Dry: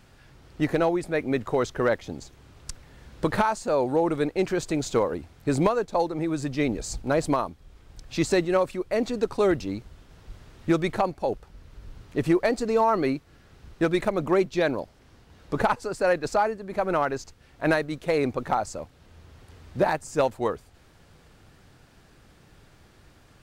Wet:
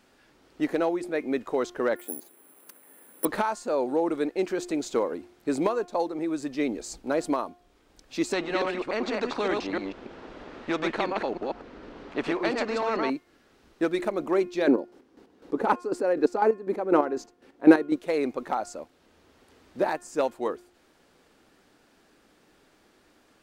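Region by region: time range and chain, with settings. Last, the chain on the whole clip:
1.96–3.25 s: band-pass 240–2800 Hz + careless resampling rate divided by 4×, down filtered, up zero stuff
8.33–13.10 s: chunks repeated in reverse 145 ms, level -3 dB + tape spacing loss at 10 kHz 28 dB + spectrum-flattening compressor 2:1
14.67–17.96 s: peaking EQ 340 Hz +12.5 dB 2.8 oct + band-stop 630 Hz, Q 8.1 + square tremolo 4 Hz, depth 65%, duty 35%
whole clip: resonant low shelf 180 Hz -13 dB, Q 1.5; de-hum 355.1 Hz, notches 9; trim -4 dB

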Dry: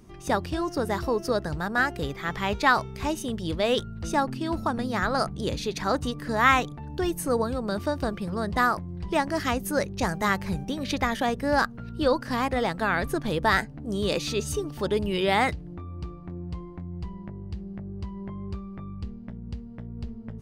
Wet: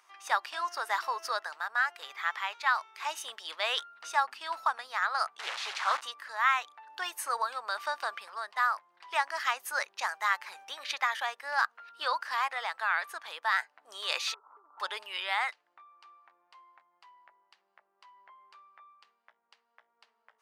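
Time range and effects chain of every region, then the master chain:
5.39–6.01 s: one-bit delta coder 64 kbps, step -26.5 dBFS + distance through air 64 m + loudspeaker Doppler distortion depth 0.41 ms
14.34–14.80 s: CVSD coder 16 kbps + rippled Chebyshev low-pass 1.4 kHz, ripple 6 dB + compression 16:1, threshold -39 dBFS
whole clip: high-pass 960 Hz 24 dB/octave; treble shelf 4.3 kHz -10 dB; gain riding within 5 dB 0.5 s

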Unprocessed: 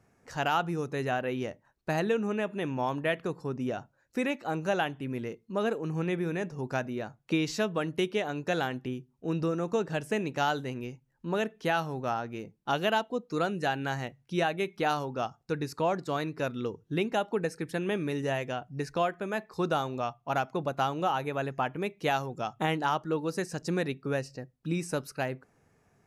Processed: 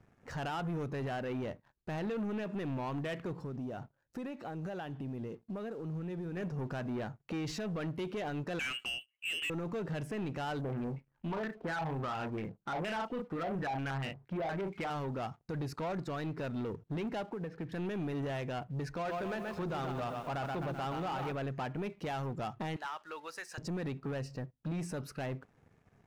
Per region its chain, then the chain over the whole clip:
3.43–6.37 s: peaking EQ 2.2 kHz -7.5 dB 0.53 oct + compression, threshold -39 dBFS
8.59–9.50 s: bass shelf 260 Hz -7.5 dB + overdrive pedal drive 17 dB, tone 1.1 kHz, clips at -17 dBFS + frequency inversion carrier 3.1 kHz
10.61–14.90 s: doubling 37 ms -8 dB + step-sequenced low-pass 8.5 Hz 670–2800 Hz
17.23–17.72 s: distance through air 310 m + compression 12:1, threshold -35 dBFS + high-pass 58 Hz 24 dB/octave
18.95–21.32 s: hum notches 50/100/150/200/250/300/350 Hz + bit-crushed delay 128 ms, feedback 55%, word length 8-bit, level -8 dB
22.76–23.58 s: high-pass 1.2 kHz + compression 2:1, threshold -38 dBFS
whole clip: tone controls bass +5 dB, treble -9 dB; peak limiter -25.5 dBFS; waveshaping leveller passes 2; trim -6 dB

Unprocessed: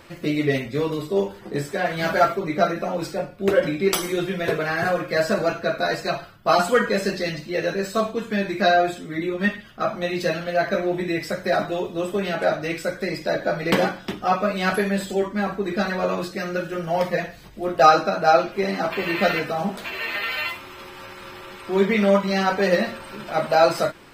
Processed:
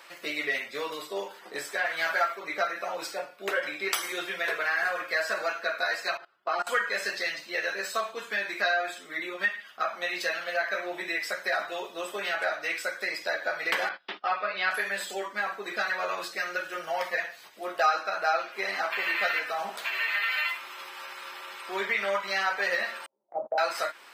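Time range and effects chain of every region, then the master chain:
6.17–6.67 s: low-pass 2 kHz 6 dB/octave + peaking EQ 370 Hz +9 dB 0.32 oct + level held to a coarse grid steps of 21 dB
13.89–14.71 s: Chebyshev band-pass 180–4700 Hz, order 4 + gate -36 dBFS, range -20 dB
23.06–23.58 s: steep low-pass 760 Hz + gate -31 dBFS, range -31 dB
whole clip: high-pass 810 Hz 12 dB/octave; dynamic bell 1.8 kHz, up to +6 dB, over -37 dBFS, Q 1.4; compression 2:1, threshold -29 dBFS

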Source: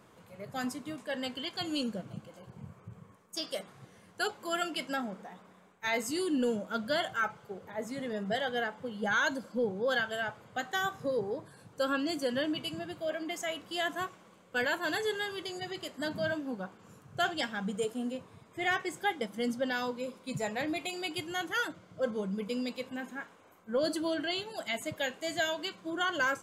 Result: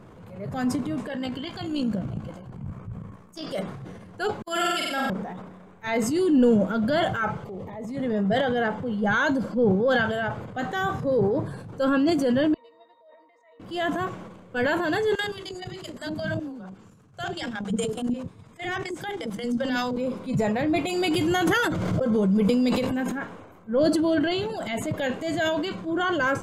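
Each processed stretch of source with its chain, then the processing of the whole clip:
1.07–3.43 s: peaking EQ 450 Hz -5 dB 0.87 oct + AM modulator 59 Hz, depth 35%
4.42–5.10 s: gate -36 dBFS, range -57 dB + tilt EQ +3 dB/octave + flutter echo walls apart 8 m, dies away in 0.83 s
7.45–7.97 s: compression 3:1, threshold -42 dBFS + Butterworth band-stop 1.5 kHz, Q 3
12.54–13.60 s: high-pass 580 Hz 24 dB/octave + pitch-class resonator A#, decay 0.23 s
15.15–19.97 s: peaking EQ 7.8 kHz +10 dB 2.5 oct + level held to a coarse grid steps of 17 dB + bands offset in time highs, lows 50 ms, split 490 Hz
20.87–23.17 s: treble shelf 5.3 kHz +9.5 dB + slow attack 194 ms + swell ahead of each attack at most 20 dB/s
whole clip: tilt EQ -3 dB/octave; transient shaper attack -5 dB, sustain +8 dB; trim +6.5 dB

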